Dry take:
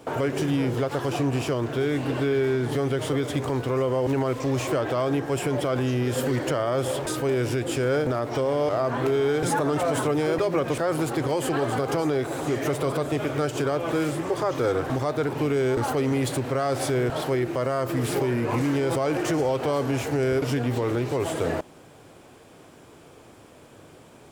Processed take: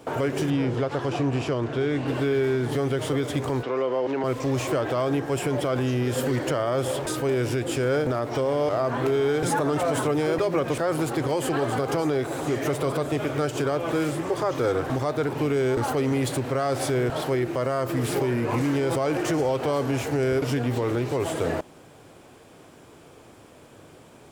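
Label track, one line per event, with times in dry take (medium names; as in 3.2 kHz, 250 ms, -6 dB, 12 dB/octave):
0.500000	2.080000	distance through air 67 m
3.630000	4.240000	three-band isolator lows -20 dB, under 240 Hz, highs -23 dB, over 5.4 kHz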